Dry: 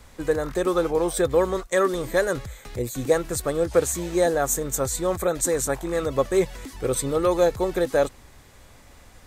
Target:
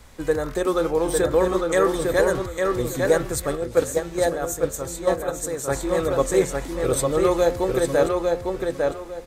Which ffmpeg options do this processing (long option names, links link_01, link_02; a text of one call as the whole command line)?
ffmpeg -i in.wav -filter_complex "[0:a]asplit=2[link_01][link_02];[link_02]adelay=853,lowpass=frequency=4500:poles=1,volume=-3dB,asplit=2[link_03][link_04];[link_04]adelay=853,lowpass=frequency=4500:poles=1,volume=0.25,asplit=2[link_05][link_06];[link_06]adelay=853,lowpass=frequency=4500:poles=1,volume=0.25,asplit=2[link_07][link_08];[link_08]adelay=853,lowpass=frequency=4500:poles=1,volume=0.25[link_09];[link_01][link_03][link_05][link_07][link_09]amix=inputs=5:normalize=0,asettb=1/sr,asplit=3[link_10][link_11][link_12];[link_10]atrim=end=3.554[link_13];[link_11]atrim=start=3.55:end=5.68,asetpts=PTS-STARTPTS,afade=type=in:duration=0.004:curve=qsin,afade=type=out:start_time=2.126:duration=0.004:curve=qsin,agate=range=-7dB:threshold=-19dB:ratio=16:detection=peak[link_14];[link_12]atrim=start=5.676[link_15];[link_13][link_14]acrossfade=duration=0.004:curve1=hsin:curve2=qsin[link_16];[link_16][link_15]acrossfade=duration=0.004:curve1=qsin:curve2=hsin,bandreject=frequency=88.04:width_type=h:width=4,bandreject=frequency=176.08:width_type=h:width=4,bandreject=frequency=264.12:width_type=h:width=4,bandreject=frequency=352.16:width_type=h:width=4,bandreject=frequency=440.2:width_type=h:width=4,bandreject=frequency=528.24:width_type=h:width=4,bandreject=frequency=616.28:width_type=h:width=4,bandreject=frequency=704.32:width_type=h:width=4,bandreject=frequency=792.36:width_type=h:width=4,bandreject=frequency=880.4:width_type=h:width=4,bandreject=frequency=968.44:width_type=h:width=4,bandreject=frequency=1056.48:width_type=h:width=4,bandreject=frequency=1144.52:width_type=h:width=4,bandreject=frequency=1232.56:width_type=h:width=4,bandreject=frequency=1320.6:width_type=h:width=4,bandreject=frequency=1408.64:width_type=h:width=4,bandreject=frequency=1496.68:width_type=h:width=4,bandreject=frequency=1584.72:width_type=h:width=4,bandreject=frequency=1672.76:width_type=h:width=4,bandreject=frequency=1760.8:width_type=h:width=4,bandreject=frequency=1848.84:width_type=h:width=4,bandreject=frequency=1936.88:width_type=h:width=4,bandreject=frequency=2024.92:width_type=h:width=4,bandreject=frequency=2112.96:width_type=h:width=4,bandreject=frequency=2201:width_type=h:width=4,bandreject=frequency=2289.04:width_type=h:width=4,bandreject=frequency=2377.08:width_type=h:width=4,bandreject=frequency=2465.12:width_type=h:width=4,bandreject=frequency=2553.16:width_type=h:width=4,bandreject=frequency=2641.2:width_type=h:width=4,bandreject=frequency=2729.24:width_type=h:width=4,bandreject=frequency=2817.28:width_type=h:width=4,volume=1dB" out.wav